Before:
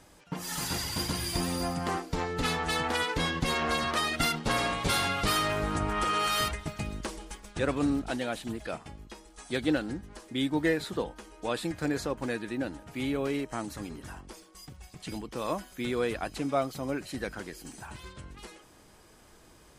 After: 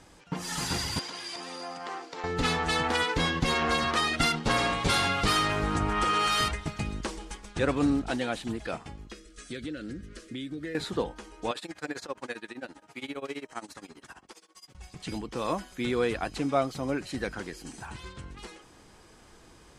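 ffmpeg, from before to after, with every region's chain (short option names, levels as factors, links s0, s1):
-filter_complex "[0:a]asettb=1/sr,asplit=3[s0][s1][s2];[s0]atrim=end=0.994[s3];[s1]atrim=start=0.99:end=2.24,asetpts=PTS-STARTPTS,afade=t=in:d=0.004:c=qsin,afade=t=out:st=1.246:d=0.004:c=qsin,acompressor=threshold=0.0224:ratio=5:attack=3.2:release=140:knee=1:detection=peak,highpass=460,lowpass=7000[s4];[s2]atrim=start=2.236[s5];[s3][s4]acrossfade=d=0.004:c1=hsin:c2=qsin[s6];[s6][s5]acrossfade=d=0.004:c1=qsin:c2=hsin,asettb=1/sr,asplit=3[s7][s8][s9];[s7]atrim=end=9.124[s10];[s8]atrim=start=9.12:end=10.75,asetpts=PTS-STARTPTS,afade=t=in:d=0.004:c=qsin,afade=t=out:st=1.626:d=0.004:c=qsin,asuperstop=centerf=870:order=4:qfactor=1.3,acompressor=threshold=0.0158:ratio=6:attack=3.2:release=140:knee=1:detection=peak[s11];[s9]atrim=start=10.746[s12];[s10][s11]acrossfade=d=0.004:c1=hsin:c2=qsin[s13];[s13][s12]acrossfade=d=0.004:c1=qsin:c2=hsin,asettb=1/sr,asplit=3[s14][s15][s16];[s14]atrim=end=11.514[s17];[s15]atrim=start=11.51:end=14.75,asetpts=PTS-STARTPTS,afade=t=in:d=0.004:c=qsin,afade=t=out:st=3.236:d=0.004:c=qsin,highpass=f=610:p=1,tremolo=f=15:d=0.91[s18];[s16]atrim=start=14.746[s19];[s17][s18]acrossfade=d=0.004:c1=hsin:c2=qsin[s20];[s20][s19]acrossfade=d=0.004:c1=qsin:c2=hsin,lowpass=8700,bandreject=f=610:w=15,volume=1.33"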